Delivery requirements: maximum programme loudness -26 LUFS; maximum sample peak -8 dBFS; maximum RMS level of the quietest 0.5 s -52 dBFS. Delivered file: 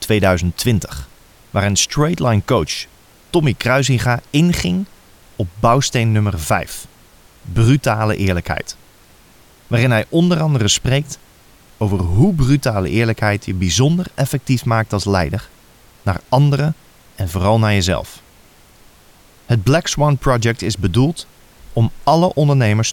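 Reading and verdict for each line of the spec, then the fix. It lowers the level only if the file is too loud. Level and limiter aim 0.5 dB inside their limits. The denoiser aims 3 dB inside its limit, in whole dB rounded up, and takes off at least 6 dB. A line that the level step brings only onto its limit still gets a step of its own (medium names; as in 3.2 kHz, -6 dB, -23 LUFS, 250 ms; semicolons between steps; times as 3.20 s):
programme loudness -16.5 LUFS: fail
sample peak -1.5 dBFS: fail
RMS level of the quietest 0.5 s -47 dBFS: fail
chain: trim -10 dB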